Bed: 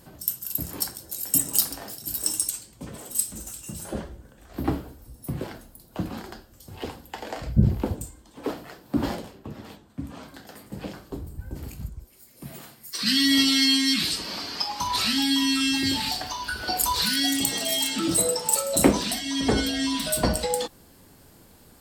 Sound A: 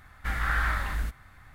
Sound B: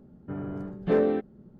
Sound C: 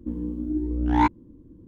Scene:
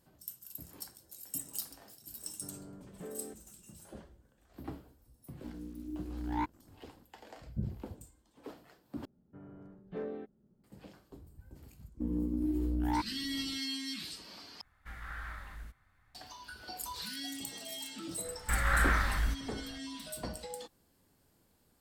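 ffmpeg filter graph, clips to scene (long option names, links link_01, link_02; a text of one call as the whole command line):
ffmpeg -i bed.wav -i cue0.wav -i cue1.wav -i cue2.wav -filter_complex "[2:a]asplit=2[link_01][link_02];[3:a]asplit=2[link_03][link_04];[1:a]asplit=2[link_05][link_06];[0:a]volume=-17.5dB[link_07];[link_01]acompressor=threshold=-27dB:ratio=6:attack=3.2:release=140:knee=1:detection=peak[link_08];[link_03]acrusher=bits=7:mix=0:aa=0.5[link_09];[link_04]acompressor=threshold=-25dB:ratio=6:attack=3.2:release=140:knee=1:detection=peak[link_10];[link_07]asplit=3[link_11][link_12][link_13];[link_11]atrim=end=9.054[link_14];[link_02]atrim=end=1.59,asetpts=PTS-STARTPTS,volume=-17dB[link_15];[link_12]atrim=start=10.636:end=14.614[link_16];[link_05]atrim=end=1.54,asetpts=PTS-STARTPTS,volume=-16.5dB[link_17];[link_13]atrim=start=16.146[link_18];[link_08]atrim=end=1.59,asetpts=PTS-STARTPTS,volume=-14.5dB,afade=type=in:duration=0.004:curve=hsin,afade=type=out:start_time=1.586:duration=0.004:curve=hsin,adelay=2130[link_19];[link_09]atrim=end=1.67,asetpts=PTS-STARTPTS,volume=-14.5dB,afade=type=in:duration=0.004:curve=hsin,afade=type=out:start_time=1.666:duration=0.004:curve=hsin,adelay=5380[link_20];[link_10]atrim=end=1.67,asetpts=PTS-STARTPTS,volume=-2.5dB,afade=type=in:duration=0.1,afade=type=out:start_time=1.57:duration=0.1,adelay=11940[link_21];[link_06]atrim=end=1.54,asetpts=PTS-STARTPTS,volume=-1dB,afade=type=in:duration=0.004:curve=hsin,afade=type=out:start_time=1.536:duration=0.004:curve=hsin,adelay=18240[link_22];[link_14][link_15]acrossfade=duration=0.004:curve1=hsin:curve2=hsin[link_23];[link_23][link_16]acrossfade=duration=0.004:curve1=hsin:curve2=hsin[link_24];[link_24][link_17]acrossfade=duration=0.004:curve1=hsin:curve2=hsin[link_25];[link_25][link_18]acrossfade=duration=0.004:curve1=hsin:curve2=hsin[link_26];[link_26][link_19][link_20][link_21][link_22]amix=inputs=5:normalize=0" out.wav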